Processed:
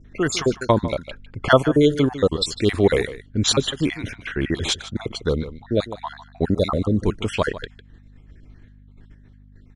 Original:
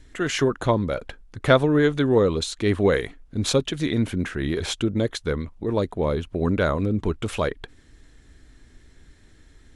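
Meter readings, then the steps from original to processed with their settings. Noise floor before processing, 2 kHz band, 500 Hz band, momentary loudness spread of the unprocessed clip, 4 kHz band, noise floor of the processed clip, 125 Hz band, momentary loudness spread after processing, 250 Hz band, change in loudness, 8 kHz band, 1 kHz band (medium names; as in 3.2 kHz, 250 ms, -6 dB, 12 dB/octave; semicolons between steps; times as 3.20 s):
-53 dBFS, +1.0 dB, +1.0 dB, 9 LU, +5.0 dB, -49 dBFS, +0.5 dB, 13 LU, +1.0 dB, +1.5 dB, +4.5 dB, +2.5 dB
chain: random holes in the spectrogram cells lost 42%; level-controlled noise filter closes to 2.2 kHz, open at -18.5 dBFS; expander -45 dBFS; treble shelf 4.2 kHz +8 dB; hum 50 Hz, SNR 25 dB; echo from a far wall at 26 m, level -14 dB; trim +4 dB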